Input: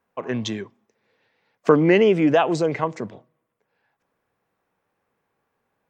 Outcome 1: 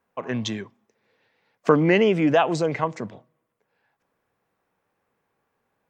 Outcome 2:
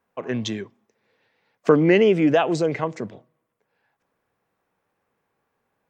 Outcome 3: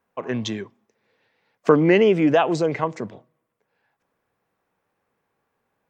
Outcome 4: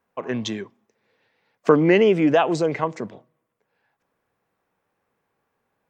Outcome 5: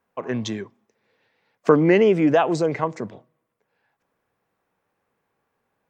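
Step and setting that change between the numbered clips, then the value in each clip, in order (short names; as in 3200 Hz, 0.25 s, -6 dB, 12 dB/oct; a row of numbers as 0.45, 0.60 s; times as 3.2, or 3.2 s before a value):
dynamic EQ, frequency: 380, 990, 9700, 100, 3000 Hz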